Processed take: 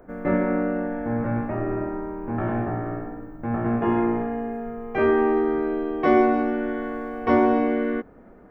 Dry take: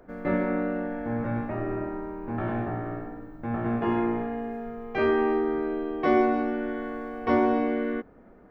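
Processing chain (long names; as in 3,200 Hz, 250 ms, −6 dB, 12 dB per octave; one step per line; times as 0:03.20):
parametric band 4,300 Hz −11.5 dB 1.1 octaves, from 0:05.37 −4 dB
level +4 dB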